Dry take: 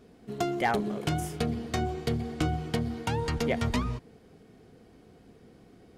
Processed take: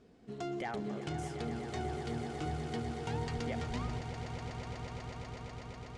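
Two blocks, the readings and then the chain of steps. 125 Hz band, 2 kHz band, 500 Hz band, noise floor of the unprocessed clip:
−6.5 dB, −8.5 dB, −7.5 dB, −57 dBFS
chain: low-pass filter 8,400 Hz 24 dB per octave
brickwall limiter −23.5 dBFS, peak gain reduction 7.5 dB
echo that builds up and dies away 123 ms, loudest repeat 8, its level −12 dB
level −6.5 dB

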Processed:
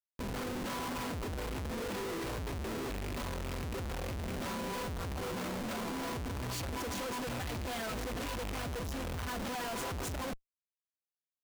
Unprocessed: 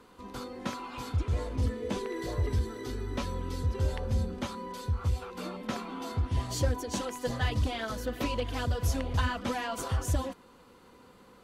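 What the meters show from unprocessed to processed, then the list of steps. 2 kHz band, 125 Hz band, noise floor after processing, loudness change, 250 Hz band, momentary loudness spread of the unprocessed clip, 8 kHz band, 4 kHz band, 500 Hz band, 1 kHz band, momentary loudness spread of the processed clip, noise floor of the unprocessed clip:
−1.5 dB, −9.5 dB, below −85 dBFS, −5.0 dB, −3.0 dB, 7 LU, −1.5 dB, −2.0 dB, −3.5 dB, −2.5 dB, 2 LU, −57 dBFS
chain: loose part that buzzes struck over −36 dBFS, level −33 dBFS
comparator with hysteresis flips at −43.5 dBFS
level −5.5 dB

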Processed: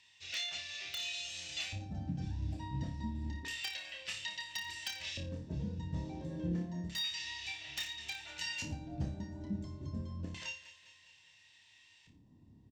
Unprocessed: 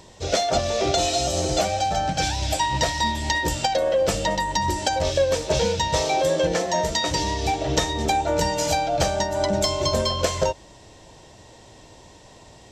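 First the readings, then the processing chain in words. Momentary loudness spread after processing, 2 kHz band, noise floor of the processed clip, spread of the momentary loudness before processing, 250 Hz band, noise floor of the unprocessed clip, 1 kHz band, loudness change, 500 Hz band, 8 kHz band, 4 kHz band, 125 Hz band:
5 LU, −13.5 dB, −64 dBFS, 2 LU, −12.5 dB, −48 dBFS, −30.5 dB, −17.5 dB, −32.0 dB, −20.5 dB, −13.5 dB, −11.5 dB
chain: guitar amp tone stack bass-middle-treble 6-0-2
comb filter 1.1 ms, depth 38%
repeating echo 205 ms, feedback 56%, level −17 dB
auto-filter band-pass square 0.29 Hz 250–2,500 Hz
in parallel at 0 dB: wrap-around overflow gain 38 dB
on the sum: parametric band 91 Hz +10 dB 0.23 octaves
speech leveller 0.5 s
on a send: flutter between parallel walls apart 4.9 metres, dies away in 0.33 s
on the sum: level +4.5 dB

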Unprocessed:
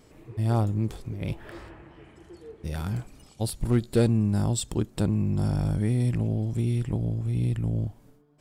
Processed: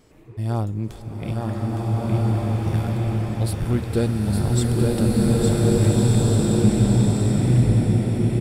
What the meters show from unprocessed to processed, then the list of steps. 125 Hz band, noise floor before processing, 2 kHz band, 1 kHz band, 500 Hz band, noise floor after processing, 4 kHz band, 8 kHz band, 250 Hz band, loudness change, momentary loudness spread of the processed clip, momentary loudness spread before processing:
+7.0 dB, −56 dBFS, +7.5 dB, +7.5 dB, +8.0 dB, −38 dBFS, +7.5 dB, +7.5 dB, +8.0 dB, +6.5 dB, 9 LU, 12 LU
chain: floating-point word with a short mantissa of 8 bits
single-tap delay 863 ms −4 dB
slow-attack reverb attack 1,760 ms, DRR −5 dB

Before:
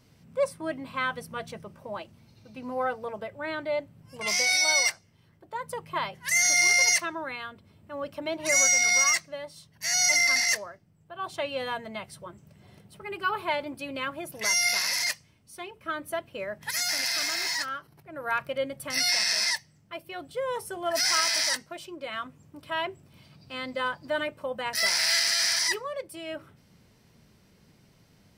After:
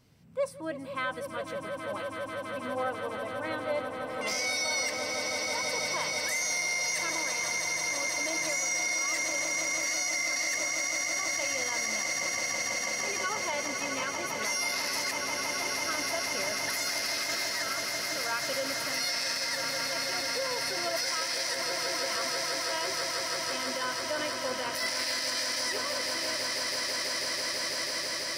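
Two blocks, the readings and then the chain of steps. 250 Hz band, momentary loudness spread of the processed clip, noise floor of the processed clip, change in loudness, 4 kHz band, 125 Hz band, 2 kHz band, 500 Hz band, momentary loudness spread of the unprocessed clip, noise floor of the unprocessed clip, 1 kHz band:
−1.0 dB, 6 LU, −38 dBFS, −4.0 dB, −2.5 dB, −1.0 dB, −2.5 dB, −1.0 dB, 19 LU, −61 dBFS, −1.5 dB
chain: echo that builds up and dies away 164 ms, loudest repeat 8, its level −10 dB
brickwall limiter −18 dBFS, peak gain reduction 10 dB
level −3.5 dB

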